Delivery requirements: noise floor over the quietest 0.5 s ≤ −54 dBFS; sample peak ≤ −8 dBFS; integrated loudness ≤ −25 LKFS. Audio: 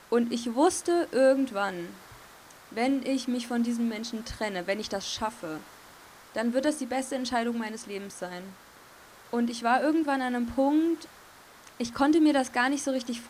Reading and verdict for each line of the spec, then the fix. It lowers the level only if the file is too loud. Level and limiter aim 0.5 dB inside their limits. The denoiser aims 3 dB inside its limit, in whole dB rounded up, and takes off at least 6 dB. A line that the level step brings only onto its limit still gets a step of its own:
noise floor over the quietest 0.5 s −52 dBFS: out of spec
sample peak −11.0 dBFS: in spec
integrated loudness −28.0 LKFS: in spec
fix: broadband denoise 6 dB, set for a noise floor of −52 dBFS

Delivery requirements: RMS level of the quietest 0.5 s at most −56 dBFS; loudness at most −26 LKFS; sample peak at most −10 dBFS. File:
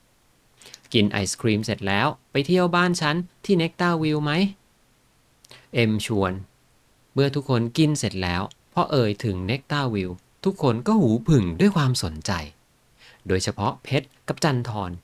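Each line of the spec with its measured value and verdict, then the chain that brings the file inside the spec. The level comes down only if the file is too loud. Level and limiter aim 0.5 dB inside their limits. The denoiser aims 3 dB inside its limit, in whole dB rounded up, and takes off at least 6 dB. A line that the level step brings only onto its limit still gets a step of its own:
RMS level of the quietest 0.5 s −61 dBFS: in spec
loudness −23.5 LKFS: out of spec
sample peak −5.5 dBFS: out of spec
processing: level −3 dB
brickwall limiter −10.5 dBFS

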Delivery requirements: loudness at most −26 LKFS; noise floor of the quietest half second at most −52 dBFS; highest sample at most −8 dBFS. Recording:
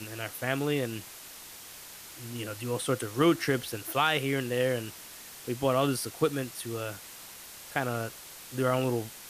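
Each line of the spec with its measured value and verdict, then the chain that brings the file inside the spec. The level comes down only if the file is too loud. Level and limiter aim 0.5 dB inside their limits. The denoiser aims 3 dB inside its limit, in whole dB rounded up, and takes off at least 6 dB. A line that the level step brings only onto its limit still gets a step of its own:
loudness −30.5 LKFS: in spec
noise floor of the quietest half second −47 dBFS: out of spec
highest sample −12.5 dBFS: in spec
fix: broadband denoise 8 dB, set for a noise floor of −47 dBFS

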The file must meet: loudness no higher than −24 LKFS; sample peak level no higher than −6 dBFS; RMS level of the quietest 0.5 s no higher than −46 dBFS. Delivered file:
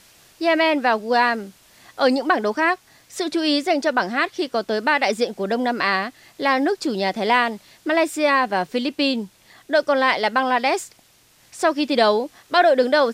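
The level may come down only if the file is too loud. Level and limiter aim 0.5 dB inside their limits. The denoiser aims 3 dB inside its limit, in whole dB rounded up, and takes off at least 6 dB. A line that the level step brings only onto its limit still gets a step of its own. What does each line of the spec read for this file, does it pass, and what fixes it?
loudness −20.5 LKFS: out of spec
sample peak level −4.5 dBFS: out of spec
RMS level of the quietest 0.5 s −55 dBFS: in spec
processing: level −4 dB

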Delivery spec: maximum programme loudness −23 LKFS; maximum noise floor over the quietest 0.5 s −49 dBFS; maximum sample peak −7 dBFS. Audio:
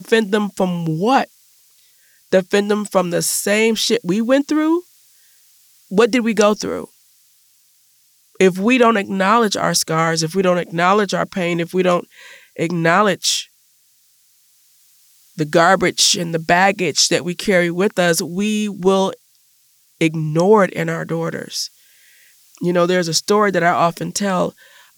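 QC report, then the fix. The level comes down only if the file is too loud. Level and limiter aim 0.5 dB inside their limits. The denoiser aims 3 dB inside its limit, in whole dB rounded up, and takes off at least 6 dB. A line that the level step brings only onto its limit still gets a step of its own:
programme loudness −17.0 LKFS: out of spec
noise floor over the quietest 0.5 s −57 dBFS: in spec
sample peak −2.5 dBFS: out of spec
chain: level −6.5 dB

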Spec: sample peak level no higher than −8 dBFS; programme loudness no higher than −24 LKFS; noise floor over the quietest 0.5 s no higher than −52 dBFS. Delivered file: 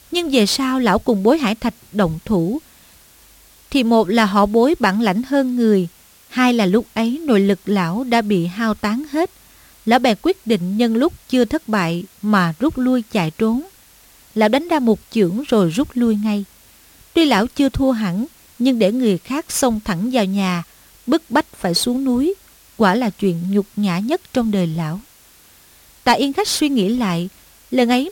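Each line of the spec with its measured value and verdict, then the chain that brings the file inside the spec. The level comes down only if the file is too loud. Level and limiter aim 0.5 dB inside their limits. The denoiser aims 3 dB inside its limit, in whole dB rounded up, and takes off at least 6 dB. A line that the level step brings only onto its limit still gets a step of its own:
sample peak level −4.0 dBFS: out of spec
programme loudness −18.0 LKFS: out of spec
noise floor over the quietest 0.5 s −49 dBFS: out of spec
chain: level −6.5 dB

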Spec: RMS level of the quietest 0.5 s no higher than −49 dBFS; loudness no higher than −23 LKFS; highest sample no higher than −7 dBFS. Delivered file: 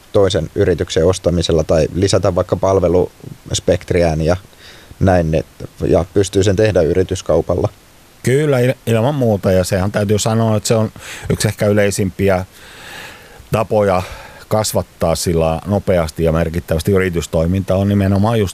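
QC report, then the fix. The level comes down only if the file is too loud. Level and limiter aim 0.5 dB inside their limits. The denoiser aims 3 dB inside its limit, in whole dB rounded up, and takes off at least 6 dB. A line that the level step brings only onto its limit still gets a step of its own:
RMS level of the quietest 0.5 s −45 dBFS: out of spec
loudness −15.5 LKFS: out of spec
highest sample −2.5 dBFS: out of spec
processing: level −8 dB

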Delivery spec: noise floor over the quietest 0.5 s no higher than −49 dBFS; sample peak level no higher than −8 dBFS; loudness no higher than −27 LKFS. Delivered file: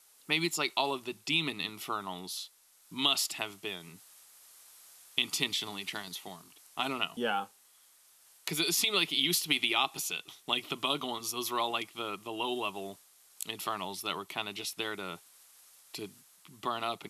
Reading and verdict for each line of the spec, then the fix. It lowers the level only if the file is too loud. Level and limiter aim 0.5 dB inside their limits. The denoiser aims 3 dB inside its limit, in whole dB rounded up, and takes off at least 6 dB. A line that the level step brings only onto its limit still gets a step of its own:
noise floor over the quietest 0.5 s −62 dBFS: in spec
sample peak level −10.5 dBFS: in spec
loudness −32.5 LKFS: in spec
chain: no processing needed

